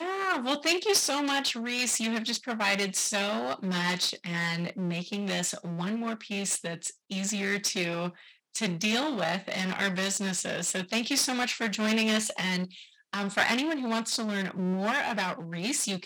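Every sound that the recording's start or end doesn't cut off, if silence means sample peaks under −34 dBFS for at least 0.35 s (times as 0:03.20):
0:08.55–0:12.65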